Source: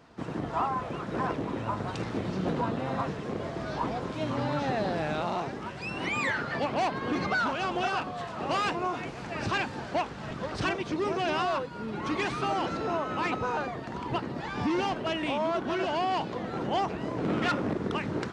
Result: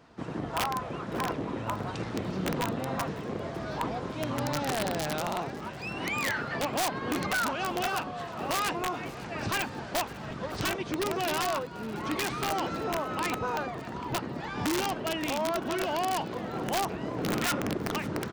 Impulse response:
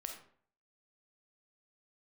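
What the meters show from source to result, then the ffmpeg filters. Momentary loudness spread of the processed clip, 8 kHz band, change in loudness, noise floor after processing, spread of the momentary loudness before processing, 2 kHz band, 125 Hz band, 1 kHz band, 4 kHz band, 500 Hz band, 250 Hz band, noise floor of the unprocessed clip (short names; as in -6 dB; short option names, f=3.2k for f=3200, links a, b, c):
7 LU, +11.0 dB, -0.5 dB, -40 dBFS, 7 LU, -0.5 dB, -1.0 dB, -1.5 dB, +2.5 dB, -1.5 dB, -1.5 dB, -39 dBFS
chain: -af "aeval=exprs='(mod(10.6*val(0)+1,2)-1)/10.6':c=same,aecho=1:1:552|1104|1656:0.1|0.042|0.0176,volume=-1dB"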